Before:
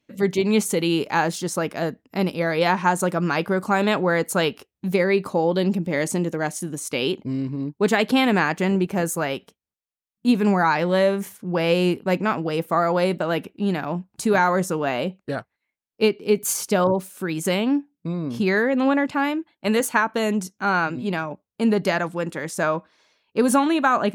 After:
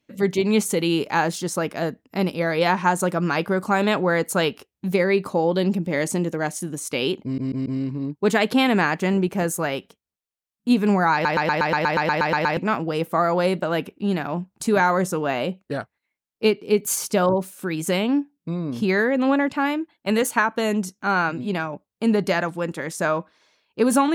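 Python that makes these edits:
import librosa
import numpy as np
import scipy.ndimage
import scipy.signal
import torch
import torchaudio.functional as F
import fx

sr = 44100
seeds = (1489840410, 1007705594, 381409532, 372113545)

y = fx.edit(x, sr, fx.stutter(start_s=7.24, slice_s=0.14, count=4),
    fx.stutter_over(start_s=10.71, slice_s=0.12, count=12), tone=tone)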